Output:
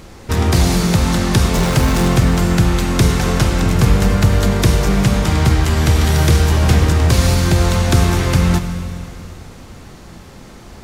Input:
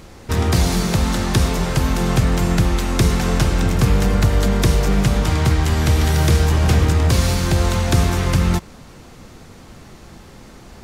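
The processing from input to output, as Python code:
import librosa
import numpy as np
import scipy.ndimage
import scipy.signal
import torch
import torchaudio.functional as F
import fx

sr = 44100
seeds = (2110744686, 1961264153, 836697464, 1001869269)

y = fx.zero_step(x, sr, step_db=-23.5, at=(1.54, 2.08))
y = fx.rev_schroeder(y, sr, rt60_s=2.9, comb_ms=31, drr_db=8.5)
y = F.gain(torch.from_numpy(y), 2.5).numpy()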